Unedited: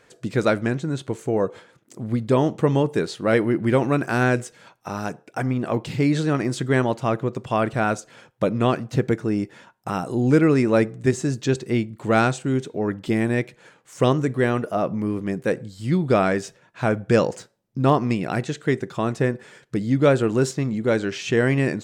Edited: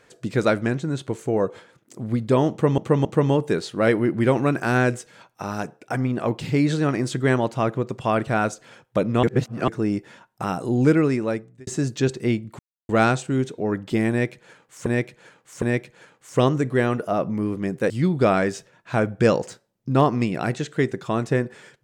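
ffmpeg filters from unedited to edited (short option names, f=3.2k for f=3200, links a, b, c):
-filter_complex "[0:a]asplit=10[a][b][c][d][e][f][g][h][i][j];[a]atrim=end=2.782[k];[b]atrim=start=2.508:end=2.782[l];[c]atrim=start=2.508:end=8.692[m];[d]atrim=start=8.688:end=9.142,asetpts=PTS-STARTPTS,areverse[n];[e]atrim=start=9.138:end=11.13,asetpts=PTS-STARTPTS,afade=t=out:st=1.172:d=0.82[o];[f]atrim=start=11.13:end=12.05,asetpts=PTS-STARTPTS,afade=t=in:d=0.004:c=hsin,afade=t=out:st=0.916:d=0.004:c=hsin,apad=pad_dur=0.3[p];[g]atrim=start=12.05:end=14.022,asetpts=PTS-STARTPTS,afade=t=in:d=0.004:c=hsin[q];[h]atrim=start=13.258:end=14.022[r];[i]atrim=start=13.258:end=15.542[s];[j]atrim=start=15.788[t];[k][l]acrossfade=d=0.004:c1=hsin:c2=hsin[u];[u][m]acrossfade=d=0.004:c1=hsin:c2=hsin[v];[v][n]acrossfade=d=0.004:c1=hsin:c2=hsin[w];[o][p][q]concat=n=3:v=0:a=1[x];[w][x]acrossfade=d=0.004:c1=hsin:c2=hsin[y];[y][r]acrossfade=d=0.004:c1=hsin:c2=hsin[z];[z][s]acrossfade=d=0.004:c1=hsin:c2=hsin[aa];[aa][t]acrossfade=d=0.004:c1=hsin:c2=hsin"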